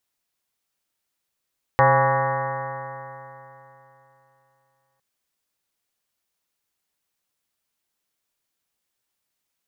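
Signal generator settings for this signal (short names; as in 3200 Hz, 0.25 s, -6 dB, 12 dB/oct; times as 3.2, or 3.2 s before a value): stretched partials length 3.21 s, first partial 131 Hz, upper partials -14.5/-13/3/-8/4/-1.5/1/-11/-7.5/-10/-3/-17 dB, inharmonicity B 0.0026, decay 3.22 s, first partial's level -20.5 dB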